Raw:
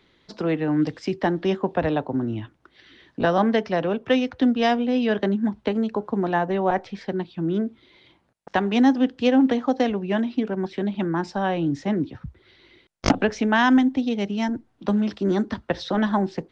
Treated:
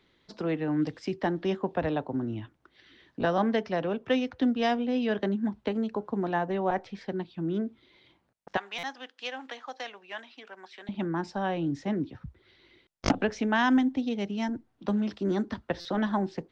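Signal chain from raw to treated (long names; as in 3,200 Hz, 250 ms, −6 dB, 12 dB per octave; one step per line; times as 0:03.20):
0:08.57–0:10.89: high-pass filter 1,100 Hz 12 dB per octave
buffer that repeats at 0:08.78/0:15.80, samples 256, times 8
level −6 dB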